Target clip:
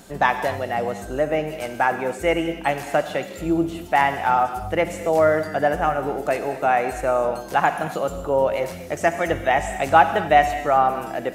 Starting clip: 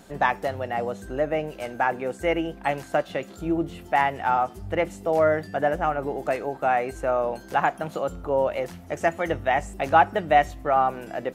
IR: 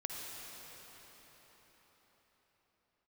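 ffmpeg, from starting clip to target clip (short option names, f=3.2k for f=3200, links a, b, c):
-filter_complex "[0:a]asplit=2[a][b];[1:a]atrim=start_sample=2205,afade=t=out:st=0.32:d=0.01,atrim=end_sample=14553,highshelf=f=3.5k:g=11[c];[b][c]afir=irnorm=-1:irlink=0,volume=-2dB[d];[a][d]amix=inputs=2:normalize=0,volume=-1dB"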